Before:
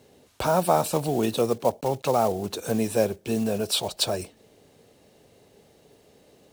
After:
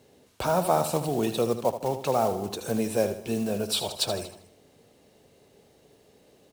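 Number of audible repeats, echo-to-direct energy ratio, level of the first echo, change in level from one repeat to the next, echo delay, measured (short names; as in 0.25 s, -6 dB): 4, -9.5 dB, -10.5 dB, -6.0 dB, 78 ms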